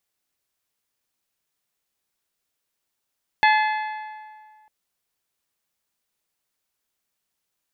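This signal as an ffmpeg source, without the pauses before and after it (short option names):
-f lavfi -i "aevalsrc='0.2*pow(10,-3*t/1.89)*sin(2*PI*860*t)+0.133*pow(10,-3*t/1.535)*sin(2*PI*1720*t)+0.0891*pow(10,-3*t/1.453)*sin(2*PI*2064*t)+0.0596*pow(10,-3*t/1.359)*sin(2*PI*2580*t)+0.0398*pow(10,-3*t/1.247)*sin(2*PI*3440*t)+0.0266*pow(10,-3*t/1.166)*sin(2*PI*4300*t)':d=1.25:s=44100"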